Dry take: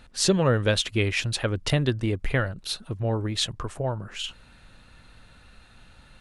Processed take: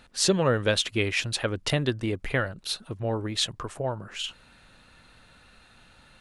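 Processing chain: low shelf 130 Hz -9 dB

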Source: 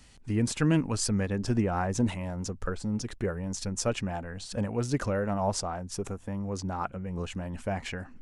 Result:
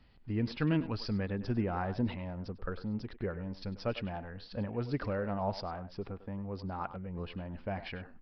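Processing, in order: speakerphone echo 0.1 s, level -12 dB; downsampling 11025 Hz; mismatched tape noise reduction decoder only; gain -5.5 dB

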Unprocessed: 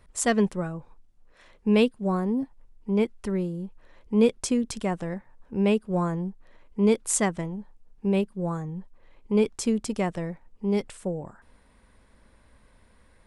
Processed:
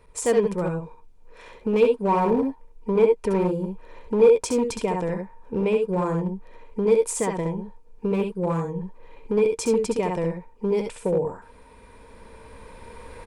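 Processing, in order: recorder AGC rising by 5.7 dB/s; limiter -19 dBFS, peak gain reduction 9.5 dB; 1.82–4.46 dynamic EQ 830 Hz, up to +6 dB, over -43 dBFS, Q 0.8; early reflections 67 ms -6 dB, 78 ms -10.5 dB; hard clip -21 dBFS, distortion -16 dB; small resonant body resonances 460/930/2400 Hz, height 14 dB, ringing for 45 ms

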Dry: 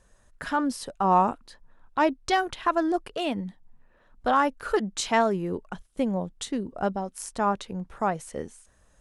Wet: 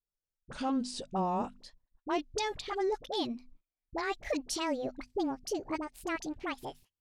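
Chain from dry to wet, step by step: speed glide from 82% -> 175%; limiter -16.5 dBFS, peak gain reduction 6.5 dB; high shelf 2200 Hz +5 dB; notches 50/100/150/200/250 Hz; gate -48 dBFS, range -33 dB; LPF 5900 Hz 12 dB/oct; bell 1400 Hz -11 dB 1.5 oct; dispersion highs, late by 41 ms, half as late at 690 Hz; gain -3 dB

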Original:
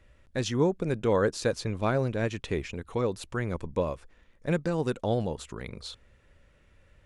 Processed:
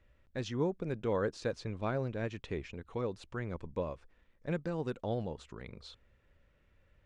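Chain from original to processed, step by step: air absorption 89 m; gain -7.5 dB

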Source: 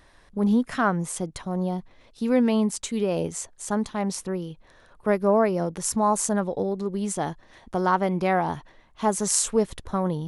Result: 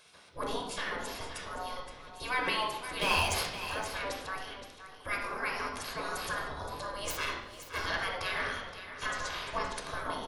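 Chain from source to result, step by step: 7.07–7.85 minimum comb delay 1.4 ms; spectral gate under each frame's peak -20 dB weak; 3.01–3.5 sample leveller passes 3; 9.06–9.76 Bessel low-pass 4200 Hz, order 2; echo 0.52 s -11.5 dB; reverb RT60 0.90 s, pre-delay 12 ms, DRR 0.5 dB; gain +3 dB

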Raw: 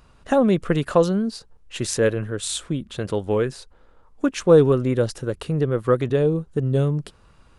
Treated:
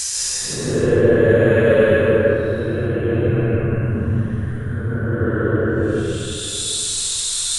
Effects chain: compressor 4:1, threshold -19 dBFS, peak gain reduction 9.5 dB; Paulstretch 13×, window 0.05 s, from 1.93; plate-style reverb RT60 2.4 s, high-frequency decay 0.35×, pre-delay 0.12 s, DRR -4.5 dB; gain +2 dB

